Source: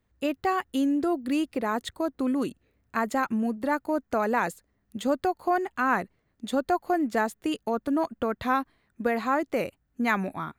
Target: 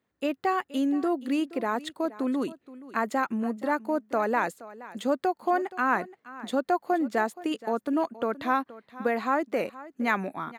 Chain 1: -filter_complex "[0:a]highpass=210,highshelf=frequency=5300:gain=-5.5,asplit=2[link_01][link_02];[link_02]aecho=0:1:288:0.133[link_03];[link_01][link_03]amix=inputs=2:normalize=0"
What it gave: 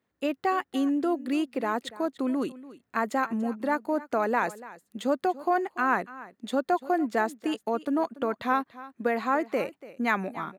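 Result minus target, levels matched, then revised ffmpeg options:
echo 185 ms early
-filter_complex "[0:a]highpass=210,highshelf=frequency=5300:gain=-5.5,asplit=2[link_01][link_02];[link_02]aecho=0:1:473:0.133[link_03];[link_01][link_03]amix=inputs=2:normalize=0"

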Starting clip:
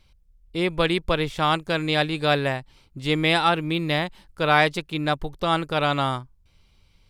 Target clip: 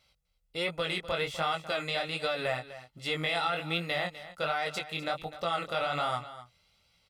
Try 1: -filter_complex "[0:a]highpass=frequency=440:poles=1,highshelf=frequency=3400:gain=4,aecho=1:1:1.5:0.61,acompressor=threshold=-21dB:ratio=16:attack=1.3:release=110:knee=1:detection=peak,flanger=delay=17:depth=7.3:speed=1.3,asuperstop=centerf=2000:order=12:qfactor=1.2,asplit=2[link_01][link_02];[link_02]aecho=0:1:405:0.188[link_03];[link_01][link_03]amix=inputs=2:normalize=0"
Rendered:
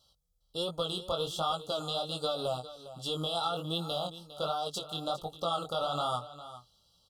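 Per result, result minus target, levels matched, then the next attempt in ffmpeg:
2,000 Hz band −17.0 dB; echo 154 ms late; 8,000 Hz band +5.0 dB
-filter_complex "[0:a]highpass=frequency=440:poles=1,highshelf=frequency=3400:gain=4,aecho=1:1:1.5:0.61,acompressor=threshold=-21dB:ratio=16:attack=1.3:release=110:knee=1:detection=peak,flanger=delay=17:depth=7.3:speed=1.3,asplit=2[link_01][link_02];[link_02]aecho=0:1:405:0.188[link_03];[link_01][link_03]amix=inputs=2:normalize=0"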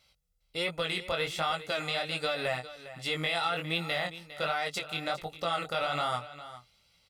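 echo 154 ms late; 8,000 Hz band +3.0 dB
-filter_complex "[0:a]highpass=frequency=440:poles=1,highshelf=frequency=3400:gain=4,aecho=1:1:1.5:0.61,acompressor=threshold=-21dB:ratio=16:attack=1.3:release=110:knee=1:detection=peak,flanger=delay=17:depth=7.3:speed=1.3,asplit=2[link_01][link_02];[link_02]aecho=0:1:251:0.188[link_03];[link_01][link_03]amix=inputs=2:normalize=0"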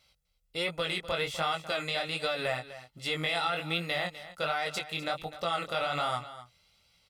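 8,000 Hz band +3.0 dB
-filter_complex "[0:a]highpass=frequency=440:poles=1,aecho=1:1:1.5:0.61,acompressor=threshold=-21dB:ratio=16:attack=1.3:release=110:knee=1:detection=peak,flanger=delay=17:depth=7.3:speed=1.3,asplit=2[link_01][link_02];[link_02]aecho=0:1:251:0.188[link_03];[link_01][link_03]amix=inputs=2:normalize=0"

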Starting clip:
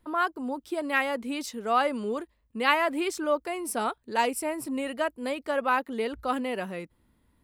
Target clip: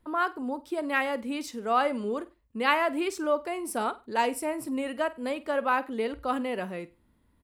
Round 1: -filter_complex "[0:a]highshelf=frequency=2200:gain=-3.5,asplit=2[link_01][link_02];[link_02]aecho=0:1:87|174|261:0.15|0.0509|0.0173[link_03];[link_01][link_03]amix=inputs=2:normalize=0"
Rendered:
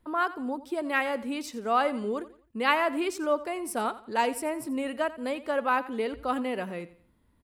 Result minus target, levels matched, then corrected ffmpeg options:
echo 38 ms late
-filter_complex "[0:a]highshelf=frequency=2200:gain=-3.5,asplit=2[link_01][link_02];[link_02]aecho=0:1:49|98|147:0.15|0.0509|0.0173[link_03];[link_01][link_03]amix=inputs=2:normalize=0"

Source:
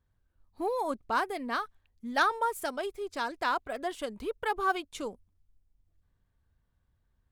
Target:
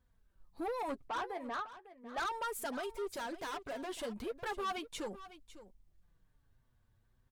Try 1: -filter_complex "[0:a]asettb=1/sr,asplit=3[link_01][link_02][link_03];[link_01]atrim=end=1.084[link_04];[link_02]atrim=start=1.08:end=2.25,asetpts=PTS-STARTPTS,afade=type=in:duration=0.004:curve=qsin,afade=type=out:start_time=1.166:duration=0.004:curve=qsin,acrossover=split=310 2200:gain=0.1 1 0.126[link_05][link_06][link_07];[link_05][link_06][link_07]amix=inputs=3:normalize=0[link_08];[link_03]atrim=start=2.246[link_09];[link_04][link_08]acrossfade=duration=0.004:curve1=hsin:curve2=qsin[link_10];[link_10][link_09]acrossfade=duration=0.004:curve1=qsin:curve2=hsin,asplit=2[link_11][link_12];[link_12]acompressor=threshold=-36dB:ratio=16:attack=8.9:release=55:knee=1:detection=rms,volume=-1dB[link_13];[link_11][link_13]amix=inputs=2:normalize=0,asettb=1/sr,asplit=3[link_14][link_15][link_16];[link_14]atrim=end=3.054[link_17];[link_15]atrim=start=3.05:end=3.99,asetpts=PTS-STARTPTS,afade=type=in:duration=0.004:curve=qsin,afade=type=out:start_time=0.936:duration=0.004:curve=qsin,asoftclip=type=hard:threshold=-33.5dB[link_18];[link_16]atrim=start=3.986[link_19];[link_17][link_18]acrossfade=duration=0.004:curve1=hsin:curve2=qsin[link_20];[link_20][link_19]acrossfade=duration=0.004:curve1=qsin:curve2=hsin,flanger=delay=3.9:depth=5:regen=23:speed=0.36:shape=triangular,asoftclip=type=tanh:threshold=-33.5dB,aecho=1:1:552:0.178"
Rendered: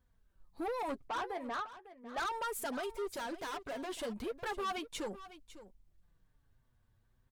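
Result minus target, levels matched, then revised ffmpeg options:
downward compressor: peak gain reduction −8.5 dB
-filter_complex "[0:a]asettb=1/sr,asplit=3[link_01][link_02][link_03];[link_01]atrim=end=1.084[link_04];[link_02]atrim=start=1.08:end=2.25,asetpts=PTS-STARTPTS,afade=type=in:duration=0.004:curve=qsin,afade=type=out:start_time=1.166:duration=0.004:curve=qsin,acrossover=split=310 2200:gain=0.1 1 0.126[link_05][link_06][link_07];[link_05][link_06][link_07]amix=inputs=3:normalize=0[link_08];[link_03]atrim=start=2.246[link_09];[link_04][link_08]acrossfade=duration=0.004:curve1=hsin:curve2=qsin[link_10];[link_10][link_09]acrossfade=duration=0.004:curve1=qsin:curve2=hsin,asplit=2[link_11][link_12];[link_12]acompressor=threshold=-45dB:ratio=16:attack=8.9:release=55:knee=1:detection=rms,volume=-1dB[link_13];[link_11][link_13]amix=inputs=2:normalize=0,asettb=1/sr,asplit=3[link_14][link_15][link_16];[link_14]atrim=end=3.054[link_17];[link_15]atrim=start=3.05:end=3.99,asetpts=PTS-STARTPTS,afade=type=in:duration=0.004:curve=qsin,afade=type=out:start_time=0.936:duration=0.004:curve=qsin,asoftclip=type=hard:threshold=-33.5dB[link_18];[link_16]atrim=start=3.986[link_19];[link_17][link_18]acrossfade=duration=0.004:curve1=hsin:curve2=qsin[link_20];[link_20][link_19]acrossfade=duration=0.004:curve1=qsin:curve2=hsin,flanger=delay=3.9:depth=5:regen=23:speed=0.36:shape=triangular,asoftclip=type=tanh:threshold=-33.5dB,aecho=1:1:552:0.178"

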